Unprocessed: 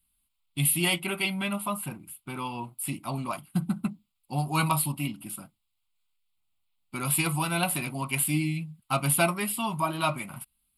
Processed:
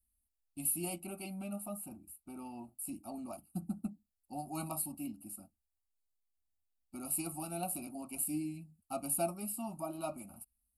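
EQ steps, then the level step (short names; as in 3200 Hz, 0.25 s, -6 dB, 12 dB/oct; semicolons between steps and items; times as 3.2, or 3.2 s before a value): Butterworth band-stop 1800 Hz, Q 0.97; bell 67 Hz +11 dB 1.3 oct; fixed phaser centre 680 Hz, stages 8; -7.5 dB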